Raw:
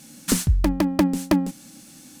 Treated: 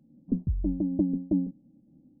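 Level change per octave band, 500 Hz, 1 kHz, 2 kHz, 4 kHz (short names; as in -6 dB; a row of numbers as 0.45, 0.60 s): -11.0 dB, under -25 dB, under -40 dB, under -40 dB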